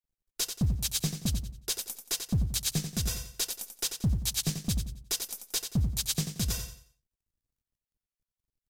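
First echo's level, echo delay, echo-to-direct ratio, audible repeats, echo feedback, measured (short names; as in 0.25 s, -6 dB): -8.0 dB, 89 ms, -7.5 dB, 3, 32%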